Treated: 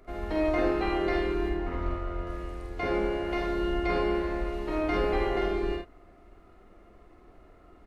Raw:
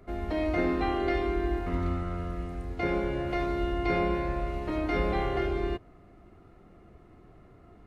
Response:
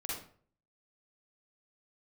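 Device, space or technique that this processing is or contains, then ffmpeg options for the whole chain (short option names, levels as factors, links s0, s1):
octave pedal: -filter_complex "[0:a]asplit=2[s0][s1];[s1]asetrate=22050,aresample=44100,atempo=2,volume=0.398[s2];[s0][s2]amix=inputs=2:normalize=0,equalizer=f=130:t=o:w=1.4:g=-13.5,asettb=1/sr,asplit=3[s3][s4][s5];[s3]atrim=end=1.494[s6];[s4]atrim=start=1.49:end=2.27,asetpts=PTS-STARTPTS,afade=t=in:d=0.004:c=qsin,afade=t=out:st=0.776:d=0.004:c=qsin,lowpass=f=2600:p=1[s7];[s5]atrim=start=2.266[s8];[s6][s7]acrossfade=d=0.004:c1=hsin:c2=qsin[s9];[s9][s8]acrossfade=d=0.004:c1=qsin:c2=hsin,aecho=1:1:48|77:0.668|0.376"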